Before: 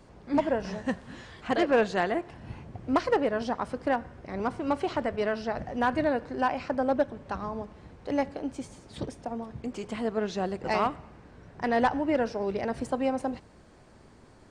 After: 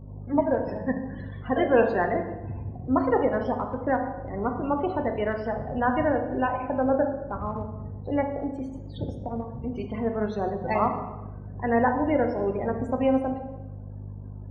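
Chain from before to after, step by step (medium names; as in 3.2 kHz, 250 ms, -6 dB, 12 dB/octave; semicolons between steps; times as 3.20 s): loudest bins only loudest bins 32; hum 50 Hz, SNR 14 dB; transient shaper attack -2 dB, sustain -8 dB; on a send: reverberation RT60 1.1 s, pre-delay 3 ms, DRR 5 dB; on the sum: trim +2 dB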